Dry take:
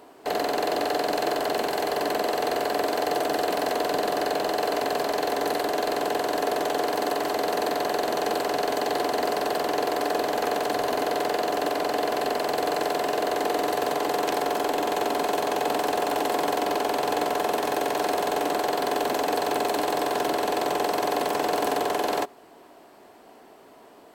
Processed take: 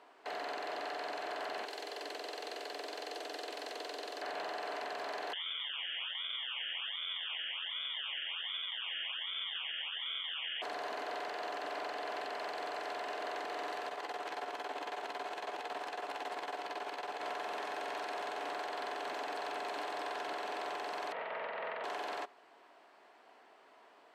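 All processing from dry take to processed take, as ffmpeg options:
-filter_complex "[0:a]asettb=1/sr,asplit=3[a][b][c];[a]atrim=end=1.654[d];[b]atrim=start=1.65:end=4.22,asetpts=PTS-STARTPTS,afade=t=in:d=0.004:c=qsin,afade=t=out:st=2.566:d=0.004:c=qsin,acrossover=split=460|3000[e][f][g];[f]acompressor=threshold=-41dB:ratio=3:attack=3.2:release=140:knee=2.83:detection=peak[h];[e][h][g]amix=inputs=3:normalize=0,acrusher=bits=6:mix=0:aa=0.5,highpass=f=290:w=0.5412,highpass=f=290:w=1.3066[i];[c]atrim=start=4.216[j];[d][i]acrossfade=d=0.004:c1=hsin:c2=qsin[k];[k][j]acrossfade=d=0.004:c1=qsin:c2=hsin,asettb=1/sr,asplit=3[l][m][n];[l]atrim=end=5.334[o];[m]atrim=start=5.33:end=10.62,asetpts=PTS-STARTPTS,afade=t=in:d=0.004:c=qsin,afade=t=out:st=5.286:d=0.004:c=qsin,acrusher=samples=33:mix=1:aa=0.000001:lfo=1:lforange=33:lforate=1.3,lowpass=f=3.1k:t=q:w=0.5098,lowpass=f=3.1k:t=q:w=0.6013,lowpass=f=3.1k:t=q:w=0.9,lowpass=f=3.1k:t=q:w=2.563,afreqshift=-3600[p];[n]atrim=start=10.616[q];[o][p]acrossfade=d=0.004:c1=hsin:c2=qsin[r];[r][q]acrossfade=d=0.004:c1=qsin:c2=hsin,asettb=1/sr,asplit=3[s][t][u];[s]atrim=end=13.884[v];[t]atrim=start=13.88:end=17.23,asetpts=PTS-STARTPTS,afade=t=in:d=0.004:c=qsin,afade=t=out:st=3.346:d=0.004:c=qsin,tremolo=f=18:d=0.79,asplit=2[w][x];[x]adelay=15,volume=-13dB[y];[w][y]amix=inputs=2:normalize=0,atrim=end_sample=147735[z];[u]atrim=start=17.226[aa];[v][z]acrossfade=d=0.004:c1=hsin:c2=qsin[ab];[ab][aa]acrossfade=d=0.004:c1=qsin:c2=hsin,asettb=1/sr,asplit=3[ac][ad][ae];[ac]atrim=end=21.124[af];[ad]atrim=start=21.12:end=21.84,asetpts=PTS-STARTPTS,afade=t=in:d=0.004:c=qsin,afade=t=out:st=0.716:d=0.004:c=qsin,aeval=exprs='val(0)+0.0316*sin(2*PI*680*n/s)':c=same,aeval=exprs='val(0)*sin(2*PI*240*n/s)':c=same,highpass=f=180:w=0.5412,highpass=f=180:w=1.3066,equalizer=f=200:t=q:w=4:g=-9,equalizer=f=330:t=q:w=4:g=-5,equalizer=f=630:t=q:w=4:g=6,equalizer=f=1k:t=q:w=4:g=-7,equalizer=f=1.9k:t=q:w=4:g=5,lowpass=f=3k:w=0.5412,lowpass=f=3k:w=1.3066[ag];[ae]atrim=start=21.836[ah];[af][ag]acrossfade=d=0.004:c1=hsin:c2=qsin[ai];[ai][ah]acrossfade=d=0.004:c1=qsin:c2=hsin,lowpass=1.9k,aderivative,alimiter=level_in=17dB:limit=-24dB:level=0:latency=1:release=17,volume=-17dB,volume=9.5dB"

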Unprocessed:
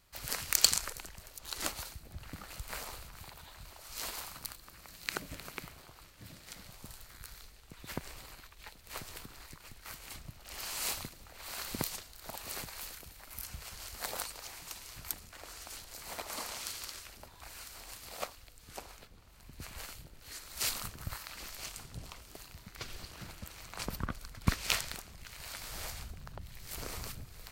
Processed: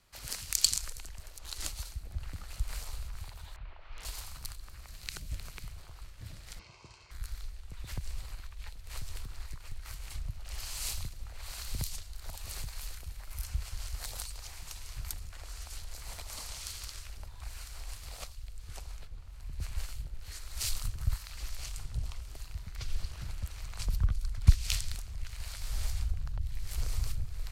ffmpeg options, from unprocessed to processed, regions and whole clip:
-filter_complex "[0:a]asettb=1/sr,asplit=3[a][b][c];[a]atrim=end=3.564[d];[b]atrim=start=3.56:end=4.05,asetpts=PTS-STARTPTS,afade=t=in:d=0.004:c=qsin,afade=t=out:st=0.486:d=0.004:c=qsin,lowpass=f=2.9k:w=0.5412,lowpass=f=2.9k:w=1.3066,equalizer=f=70:t=o:w=2.3:g=-7,aeval=exprs='(mod(94.4*val(0)+1,2)-1)/94.4':c=same[e];[c]atrim=start=4.046[f];[d][e]acrossfade=d=0.004:c1=hsin:c2=qsin[g];[g][f]acrossfade=d=0.004:c1=qsin:c2=hsin,asettb=1/sr,asplit=3[h][i][j];[h]atrim=end=6.594[k];[i]atrim=start=6.59:end=7.11,asetpts=PTS-STARTPTS,afade=t=in:d=0.004:c=qsin,afade=t=out:st=0.516:d=0.004:c=qsin,highpass=190,equalizer=f=340:t=q:w=4:g=9,equalizer=f=550:t=q:w=4:g=-7,equalizer=f=910:t=q:w=4:g=4,equalizer=f=1.7k:t=q:w=4:g=-10,equalizer=f=2.4k:t=q:w=4:g=6,equalizer=f=3.7k:t=q:w=4:g=-6,lowpass=f=5.8k:w=0.5412,lowpass=f=5.8k:w=1.3066,bandreject=f=3.4k:w=20,aecho=1:1:1.9:0.43,atrim=end_sample=22932[l];[j]atrim=start=7.106[m];[k][l]acrossfade=d=0.004:c1=hsin:c2=qsin[n];[n][m]acrossfade=d=0.004:c1=qsin:c2=hsin,lowpass=12k,asubboost=boost=7.5:cutoff=83,acrossover=split=180|3000[o][p][q];[p]acompressor=threshold=-53dB:ratio=2.5[r];[o][r][q]amix=inputs=3:normalize=0"

